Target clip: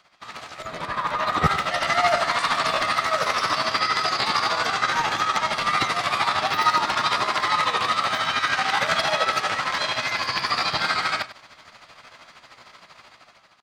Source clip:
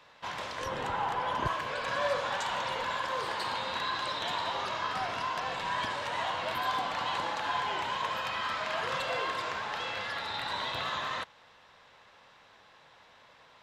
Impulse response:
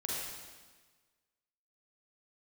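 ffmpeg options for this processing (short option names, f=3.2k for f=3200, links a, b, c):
-filter_complex "[0:a]acrossover=split=5300[a][b];[b]alimiter=level_in=19.5dB:limit=-24dB:level=0:latency=1,volume=-19.5dB[c];[a][c]amix=inputs=2:normalize=0,tremolo=f=13:d=0.66,dynaudnorm=f=720:g=3:m=12dB,asetrate=53981,aresample=44100,atempo=0.816958,aecho=1:1:98:0.178,volume=1.5dB"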